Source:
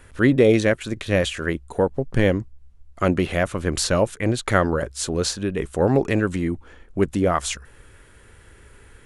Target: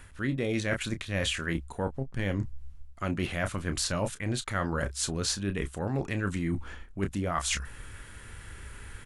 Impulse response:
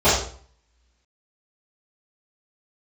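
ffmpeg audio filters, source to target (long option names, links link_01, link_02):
-filter_complex "[0:a]equalizer=frequency=450:width=1.1:gain=-8.5,asplit=2[link_01][link_02];[link_02]adelay=30,volume=-11dB[link_03];[link_01][link_03]amix=inputs=2:normalize=0,areverse,acompressor=threshold=-32dB:ratio=6,areverse,volume=4.5dB"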